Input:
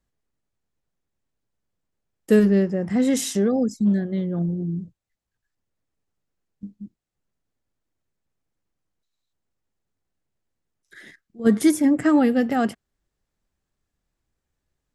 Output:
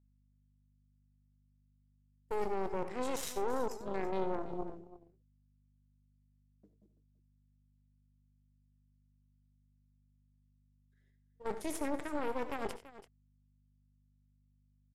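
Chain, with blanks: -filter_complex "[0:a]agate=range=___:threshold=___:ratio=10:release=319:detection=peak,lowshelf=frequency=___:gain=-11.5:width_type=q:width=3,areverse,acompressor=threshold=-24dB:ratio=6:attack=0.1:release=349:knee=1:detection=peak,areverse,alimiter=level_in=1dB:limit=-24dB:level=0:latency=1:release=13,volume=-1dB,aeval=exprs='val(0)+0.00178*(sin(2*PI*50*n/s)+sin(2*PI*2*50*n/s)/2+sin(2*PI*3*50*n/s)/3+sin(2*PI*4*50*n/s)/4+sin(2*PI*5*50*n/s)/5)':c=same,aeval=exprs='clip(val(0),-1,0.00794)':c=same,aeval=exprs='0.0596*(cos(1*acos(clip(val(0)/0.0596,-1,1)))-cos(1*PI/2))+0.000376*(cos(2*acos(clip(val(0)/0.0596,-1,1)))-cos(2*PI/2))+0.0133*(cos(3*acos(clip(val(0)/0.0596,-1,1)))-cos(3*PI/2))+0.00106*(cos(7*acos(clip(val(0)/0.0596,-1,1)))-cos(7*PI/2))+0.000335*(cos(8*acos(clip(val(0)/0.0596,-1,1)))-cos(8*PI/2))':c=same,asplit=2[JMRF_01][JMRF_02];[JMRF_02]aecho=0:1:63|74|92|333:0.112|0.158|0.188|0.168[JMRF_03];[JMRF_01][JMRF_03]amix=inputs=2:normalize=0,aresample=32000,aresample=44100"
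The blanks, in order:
-25dB, -35dB, 290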